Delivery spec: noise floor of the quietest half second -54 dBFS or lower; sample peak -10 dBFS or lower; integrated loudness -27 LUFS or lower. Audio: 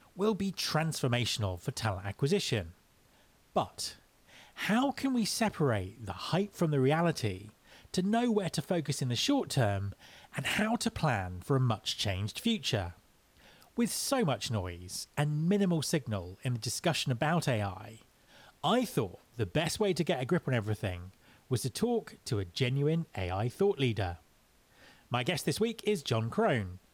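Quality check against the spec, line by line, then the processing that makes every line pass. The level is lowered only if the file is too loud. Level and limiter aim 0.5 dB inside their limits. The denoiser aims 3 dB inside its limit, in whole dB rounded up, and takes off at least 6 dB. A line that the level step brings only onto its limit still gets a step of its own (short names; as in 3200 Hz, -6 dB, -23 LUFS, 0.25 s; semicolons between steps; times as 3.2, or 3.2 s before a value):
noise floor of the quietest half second -65 dBFS: OK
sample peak -18.0 dBFS: OK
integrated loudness -32.0 LUFS: OK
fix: none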